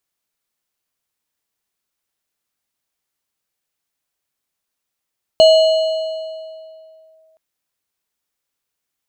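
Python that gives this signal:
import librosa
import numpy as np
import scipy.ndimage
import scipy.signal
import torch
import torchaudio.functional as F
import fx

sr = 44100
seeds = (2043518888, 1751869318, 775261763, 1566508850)

y = fx.fm2(sr, length_s=1.97, level_db=-4, carrier_hz=639.0, ratio=5.6, index=0.5, index_s=1.8, decay_s=2.42, shape='linear')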